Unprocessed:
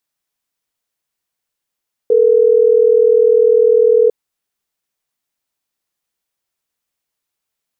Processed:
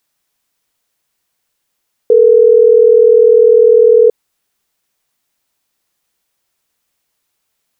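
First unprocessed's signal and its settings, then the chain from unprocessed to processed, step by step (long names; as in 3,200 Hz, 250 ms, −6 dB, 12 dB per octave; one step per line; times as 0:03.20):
call progress tone ringback tone, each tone −10 dBFS
boost into a limiter +10 dB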